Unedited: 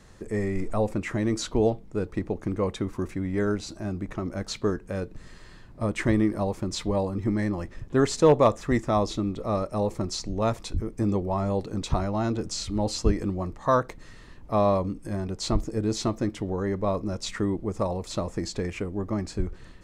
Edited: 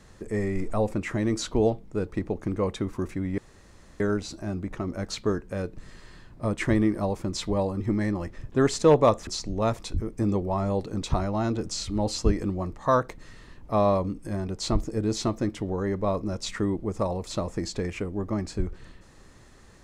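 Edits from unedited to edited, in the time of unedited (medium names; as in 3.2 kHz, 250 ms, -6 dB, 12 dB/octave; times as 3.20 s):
3.38 s: insert room tone 0.62 s
8.65–10.07 s: delete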